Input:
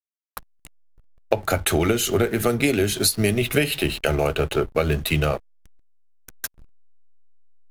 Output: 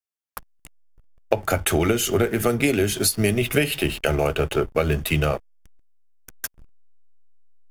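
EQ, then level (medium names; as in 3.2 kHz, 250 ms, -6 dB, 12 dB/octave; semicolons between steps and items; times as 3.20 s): band-stop 4 kHz, Q 7.9; 0.0 dB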